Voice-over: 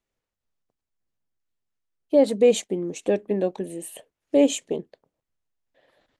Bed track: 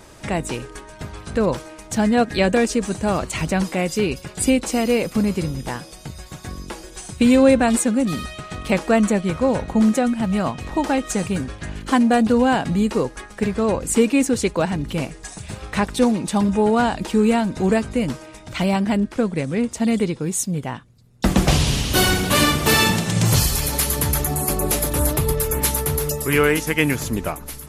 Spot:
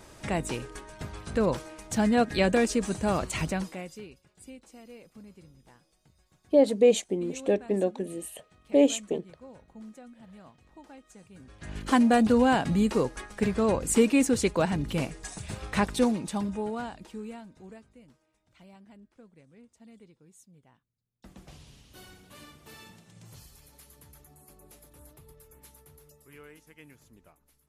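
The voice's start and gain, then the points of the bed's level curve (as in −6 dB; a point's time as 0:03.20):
4.40 s, −2.5 dB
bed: 0:03.42 −6 dB
0:04.23 −29.5 dB
0:11.32 −29.5 dB
0:11.77 −5 dB
0:15.89 −5 dB
0:18.02 −33.5 dB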